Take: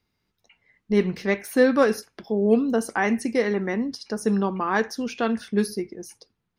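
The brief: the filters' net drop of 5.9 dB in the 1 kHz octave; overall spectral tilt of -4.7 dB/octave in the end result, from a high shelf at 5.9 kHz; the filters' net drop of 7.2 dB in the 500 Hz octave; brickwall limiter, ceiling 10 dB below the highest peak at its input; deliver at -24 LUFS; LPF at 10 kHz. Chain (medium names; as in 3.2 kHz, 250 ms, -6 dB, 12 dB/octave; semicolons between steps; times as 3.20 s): low-pass 10 kHz; peaking EQ 500 Hz -7.5 dB; peaking EQ 1 kHz -5.5 dB; treble shelf 5.9 kHz +5 dB; trim +6 dB; peak limiter -14.5 dBFS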